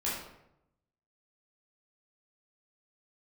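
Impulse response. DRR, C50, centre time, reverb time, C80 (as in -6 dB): -8.0 dB, 1.5 dB, 57 ms, 0.80 s, 5.0 dB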